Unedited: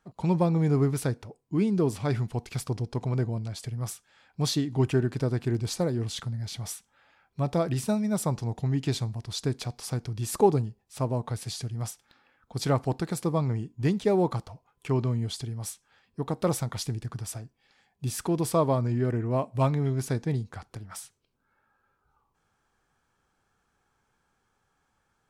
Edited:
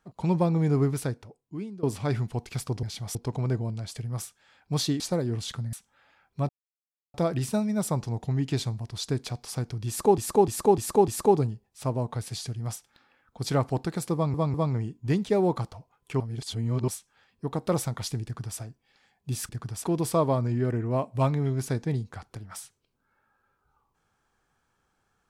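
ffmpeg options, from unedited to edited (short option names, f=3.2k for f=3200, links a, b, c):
-filter_complex "[0:a]asplit=17[a][b][c][d][e][f][g][h][i][j][k][l][m][n][o][p][q];[a]atrim=end=1.83,asetpts=PTS-STARTPTS,afade=t=out:st=0.86:d=0.97:silence=0.0944061[r];[b]atrim=start=1.83:end=2.832,asetpts=PTS-STARTPTS,afade=t=in:d=0.004:c=hsin:silence=0.0944061[s];[c]atrim=start=6.408:end=6.732[t];[d]atrim=start=2.828:end=4.682[u];[e]atrim=start=5.678:end=6.412[v];[f]atrim=start=6.728:end=7.49,asetpts=PTS-STARTPTS,afade=t=out:st=0.758:d=0.004:c=hsin,apad=pad_dur=0.65[w];[g]atrim=start=7.49:end=10.532,asetpts=PTS-STARTPTS,afade=t=in:d=0.004:c=hsin[x];[h]atrim=start=10.228:end=10.532[y];[i]atrim=start=10.228:end=10.532[z];[j]atrim=start=10.228:end=10.532[aa];[k]atrim=start=10.228:end=13.492[ab];[l]atrim=start=13.288:end=13.492[ac];[m]atrim=start=13.288:end=14.952[ad];[n]atrim=start=14.948:end=15.632,asetpts=PTS-STARTPTS,areverse[ae];[o]atrim=start=15.628:end=18.242[af];[p]atrim=start=16.988:end=17.342[ag];[q]atrim=start=18.238[ah];[r][s]concat=n=2:v=0:a=1[ai];[ai][t]acrossfade=d=0.004:c1=hsin:c2=hsin[aj];[aj][u]acrossfade=d=0.004:c1=hsin:c2=hsin[ak];[ak][v]acrossfade=d=0.004:c1=hsin:c2=hsin[al];[w][x]concat=n=2:v=0:a=1[am];[al][am]acrossfade=d=0.004:c1=hsin:c2=hsin[an];[an][y]acrossfade=d=0.004:c1=hsin:c2=hsin[ao];[ao][z]acrossfade=d=0.004:c1=hsin:c2=hsin[ap];[ap][aa]acrossfade=d=0.004:c1=hsin:c2=hsin[aq];[aq][ab]acrossfade=d=0.004:c1=hsin:c2=hsin[ar];[ar][ac]acrossfade=d=0.004:c1=hsin:c2=hsin[as];[as][ad]acrossfade=d=0.004:c1=hsin:c2=hsin[at];[at][ae]acrossfade=d=0.004:c1=hsin:c2=hsin[au];[au][af]acrossfade=d=0.004:c1=hsin:c2=hsin[av];[av][ag]acrossfade=d=0.004:c1=hsin:c2=hsin[aw];[aw][ah]acrossfade=d=0.004:c1=hsin:c2=hsin"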